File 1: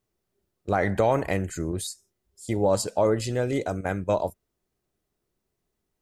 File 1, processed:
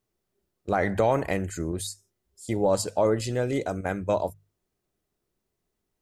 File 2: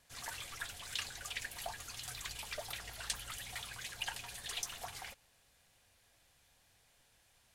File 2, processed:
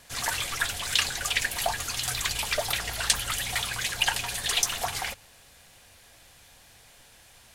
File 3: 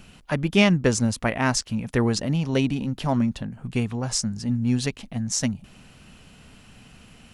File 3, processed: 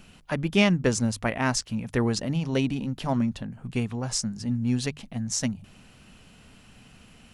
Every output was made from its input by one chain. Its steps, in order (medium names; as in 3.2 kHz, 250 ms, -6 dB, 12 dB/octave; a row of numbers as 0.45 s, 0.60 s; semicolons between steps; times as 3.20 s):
hum notches 50/100/150 Hz; normalise loudness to -27 LUFS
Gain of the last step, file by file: -0.5 dB, +15.5 dB, -2.5 dB